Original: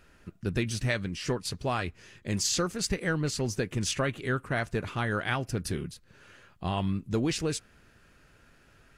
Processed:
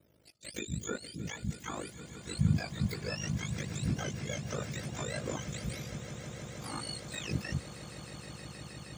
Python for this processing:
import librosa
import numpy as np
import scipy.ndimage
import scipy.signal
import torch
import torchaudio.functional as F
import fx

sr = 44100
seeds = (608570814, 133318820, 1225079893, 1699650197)

y = fx.octave_mirror(x, sr, pivot_hz=920.0)
y = y * np.sin(2.0 * np.pi * 26.0 * np.arange(len(y)) / sr)
y = fx.echo_swell(y, sr, ms=157, loudest=8, wet_db=-16.5)
y = F.gain(torch.from_numpy(y), -5.0).numpy()